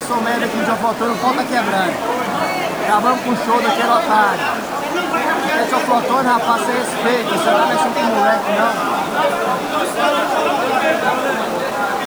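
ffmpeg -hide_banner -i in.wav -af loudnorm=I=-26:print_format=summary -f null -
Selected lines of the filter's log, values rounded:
Input Integrated:    -16.5 LUFS
Input True Peak:      -1.3 dBTP
Input LRA:             1.3 LU
Input Threshold:     -26.5 LUFS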